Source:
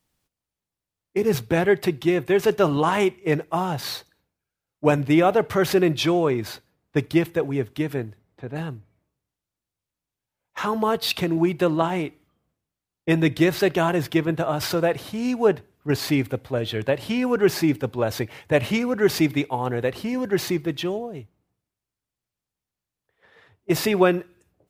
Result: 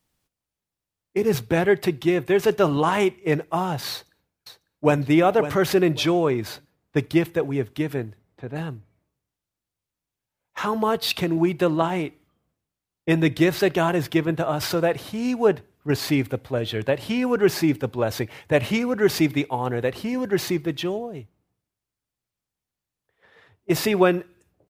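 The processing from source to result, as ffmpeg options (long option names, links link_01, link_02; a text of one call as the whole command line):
ffmpeg -i in.wav -filter_complex "[0:a]asplit=2[link_01][link_02];[link_02]afade=type=in:start_time=3.91:duration=0.01,afade=type=out:start_time=5:duration=0.01,aecho=0:1:550|1100|1650:0.281838|0.0704596|0.0176149[link_03];[link_01][link_03]amix=inputs=2:normalize=0" out.wav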